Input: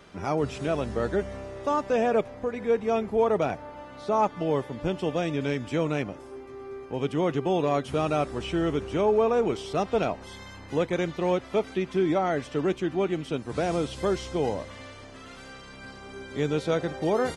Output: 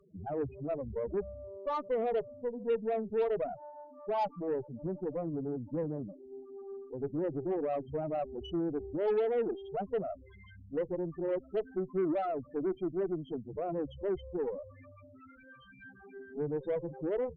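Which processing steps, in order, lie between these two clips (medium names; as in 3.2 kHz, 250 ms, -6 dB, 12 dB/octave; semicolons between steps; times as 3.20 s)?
loudest bins only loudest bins 4; Chebyshev shaper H 5 -25 dB, 8 -27 dB, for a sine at -15 dBFS; trim -6.5 dB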